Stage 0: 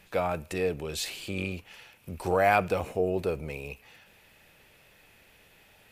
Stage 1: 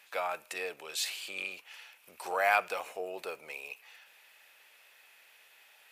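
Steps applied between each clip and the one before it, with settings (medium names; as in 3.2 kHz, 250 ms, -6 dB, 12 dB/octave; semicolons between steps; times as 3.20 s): high-pass 880 Hz 12 dB/octave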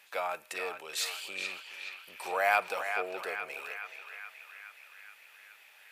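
band-passed feedback delay 424 ms, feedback 68%, band-pass 1.9 kHz, level -5.5 dB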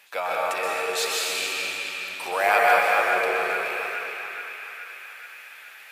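plate-style reverb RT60 2.7 s, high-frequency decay 0.85×, pre-delay 110 ms, DRR -4.5 dB; trim +5 dB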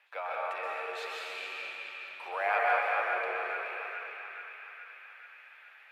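three-band isolator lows -17 dB, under 440 Hz, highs -21 dB, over 3.1 kHz; trim -8 dB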